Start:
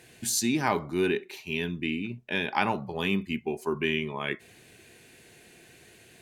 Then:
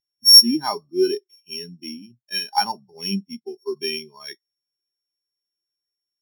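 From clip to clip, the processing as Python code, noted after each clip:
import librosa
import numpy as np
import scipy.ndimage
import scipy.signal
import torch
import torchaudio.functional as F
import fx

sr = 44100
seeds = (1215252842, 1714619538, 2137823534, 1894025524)

y = np.r_[np.sort(x[:len(x) // 8 * 8].reshape(-1, 8), axis=1).ravel(), x[len(x) // 8 * 8:]]
y = fx.tilt_shelf(y, sr, db=-5.0, hz=970.0)
y = fx.spectral_expand(y, sr, expansion=2.5)
y = F.gain(torch.from_numpy(y), 4.5).numpy()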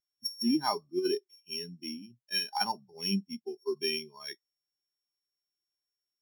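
y = fx.over_compress(x, sr, threshold_db=-19.0, ratio=-0.5)
y = F.gain(torch.from_numpy(y), -9.0).numpy()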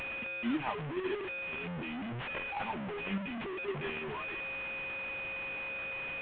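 y = fx.delta_mod(x, sr, bps=16000, step_db=-27.0)
y = F.gain(torch.from_numpy(y), -5.5).numpy()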